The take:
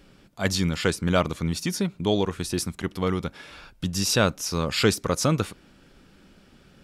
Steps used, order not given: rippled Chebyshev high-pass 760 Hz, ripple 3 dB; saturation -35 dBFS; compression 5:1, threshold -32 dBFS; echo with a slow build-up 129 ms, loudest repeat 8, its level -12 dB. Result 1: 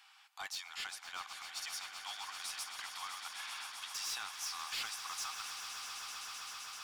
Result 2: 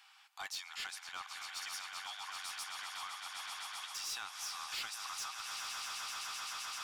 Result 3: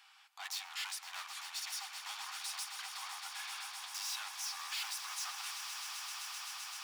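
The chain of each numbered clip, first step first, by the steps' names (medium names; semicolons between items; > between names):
compression > rippled Chebyshev high-pass > saturation > echo with a slow build-up; echo with a slow build-up > compression > rippled Chebyshev high-pass > saturation; saturation > echo with a slow build-up > compression > rippled Chebyshev high-pass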